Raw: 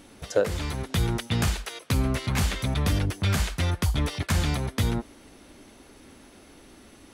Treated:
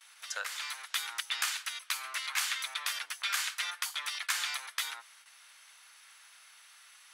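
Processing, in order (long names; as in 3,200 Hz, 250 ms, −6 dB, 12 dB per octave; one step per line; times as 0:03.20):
noise gate with hold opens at −41 dBFS
high-pass filter 1,200 Hz 24 dB per octave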